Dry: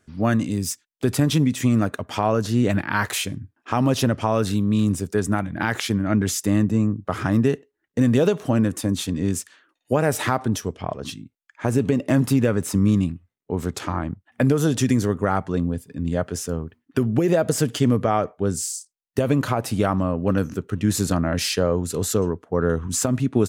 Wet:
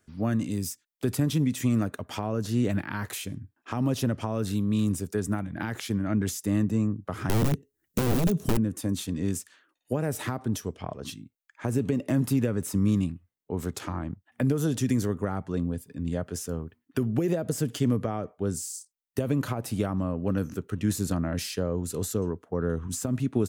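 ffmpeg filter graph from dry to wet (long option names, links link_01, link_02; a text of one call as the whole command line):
ffmpeg -i in.wav -filter_complex "[0:a]asettb=1/sr,asplit=3[link_01][link_02][link_03];[link_01]atrim=end=7.294[link_04];[link_02]atrim=start=7.29:end=8.57,asetpts=PTS-STARTPTS,afade=type=in:duration=0.004:curve=qsin,afade=type=out:start_time=1.276:duration=0.004:curve=qsin,bass=frequency=250:gain=13,treble=frequency=4000:gain=14,aeval=exprs='(mod(2.51*val(0)+1,2)-1)/2.51':channel_layout=same[link_05];[link_03]atrim=start=8.566[link_06];[link_04][link_05]acrossfade=duration=0.004:curve1=hsin:curve2=qsin[link_07];[link_07][link_06]acrossfade=duration=0.004:curve1=qsin:curve2=hsin,highshelf=frequency=11000:gain=9.5,acrossover=split=410[link_08][link_09];[link_09]acompressor=threshold=-28dB:ratio=4[link_10];[link_08][link_10]amix=inputs=2:normalize=0,volume=-5.5dB" out.wav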